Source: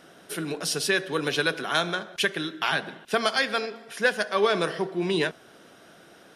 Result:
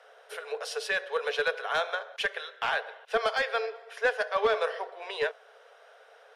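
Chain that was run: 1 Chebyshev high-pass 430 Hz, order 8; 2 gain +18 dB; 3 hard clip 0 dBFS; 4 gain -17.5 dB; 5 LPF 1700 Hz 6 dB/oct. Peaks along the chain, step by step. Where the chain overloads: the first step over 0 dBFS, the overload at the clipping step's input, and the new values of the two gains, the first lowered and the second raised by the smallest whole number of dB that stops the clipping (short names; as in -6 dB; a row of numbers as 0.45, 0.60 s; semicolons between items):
-10.0, +8.0, 0.0, -17.5, -17.5 dBFS; step 2, 8.0 dB; step 2 +10 dB, step 4 -9.5 dB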